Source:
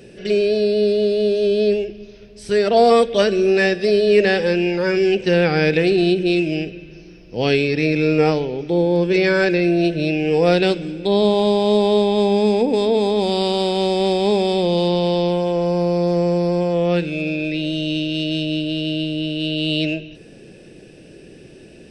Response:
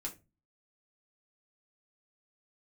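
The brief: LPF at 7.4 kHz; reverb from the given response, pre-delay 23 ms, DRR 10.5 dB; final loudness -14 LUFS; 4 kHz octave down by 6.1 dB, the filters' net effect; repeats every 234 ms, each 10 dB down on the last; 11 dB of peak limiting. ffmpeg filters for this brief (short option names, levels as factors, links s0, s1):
-filter_complex "[0:a]lowpass=7400,equalizer=f=4000:t=o:g=-8,alimiter=limit=0.188:level=0:latency=1,aecho=1:1:234|468|702|936:0.316|0.101|0.0324|0.0104,asplit=2[s0][s1];[1:a]atrim=start_sample=2205,adelay=23[s2];[s1][s2]afir=irnorm=-1:irlink=0,volume=0.355[s3];[s0][s3]amix=inputs=2:normalize=0,volume=2.37"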